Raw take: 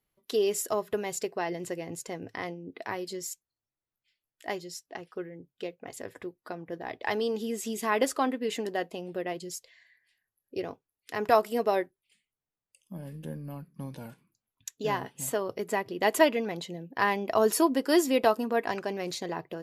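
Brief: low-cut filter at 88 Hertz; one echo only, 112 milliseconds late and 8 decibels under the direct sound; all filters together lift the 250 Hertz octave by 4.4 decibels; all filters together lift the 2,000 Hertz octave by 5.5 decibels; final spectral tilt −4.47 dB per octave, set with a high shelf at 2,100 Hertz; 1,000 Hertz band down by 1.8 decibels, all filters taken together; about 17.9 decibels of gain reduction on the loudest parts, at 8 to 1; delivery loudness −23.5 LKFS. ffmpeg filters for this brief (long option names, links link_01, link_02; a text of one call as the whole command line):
ffmpeg -i in.wav -af "highpass=88,equalizer=frequency=250:width_type=o:gain=6,equalizer=frequency=1000:width_type=o:gain=-4,equalizer=frequency=2000:width_type=o:gain=9,highshelf=frequency=2100:gain=-3.5,acompressor=threshold=-34dB:ratio=8,aecho=1:1:112:0.398,volume=15.5dB" out.wav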